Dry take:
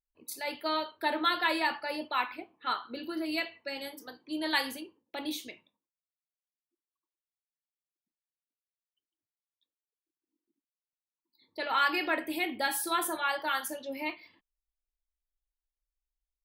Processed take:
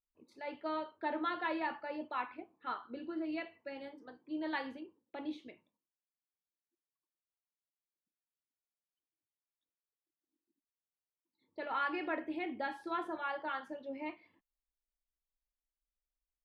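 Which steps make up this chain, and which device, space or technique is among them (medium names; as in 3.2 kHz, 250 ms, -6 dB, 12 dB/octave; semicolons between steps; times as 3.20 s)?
phone in a pocket (low-pass 3.2 kHz 12 dB/octave; peaking EQ 240 Hz +2 dB 2.7 oct; treble shelf 2.4 kHz -11 dB); trim -5.5 dB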